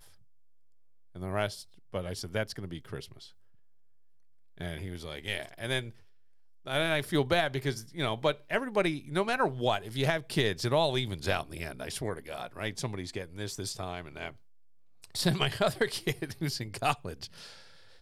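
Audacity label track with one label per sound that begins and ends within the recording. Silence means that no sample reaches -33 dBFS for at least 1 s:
1.220000	3.000000	sound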